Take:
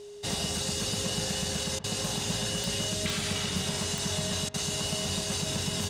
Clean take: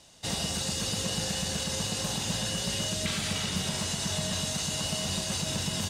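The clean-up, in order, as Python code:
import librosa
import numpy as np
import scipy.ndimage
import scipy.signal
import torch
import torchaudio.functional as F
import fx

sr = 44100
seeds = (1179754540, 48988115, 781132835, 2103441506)

y = fx.fix_declick_ar(x, sr, threshold=10.0)
y = fx.notch(y, sr, hz=410.0, q=30.0)
y = fx.fix_interpolate(y, sr, at_s=(1.79, 4.49), length_ms=49.0)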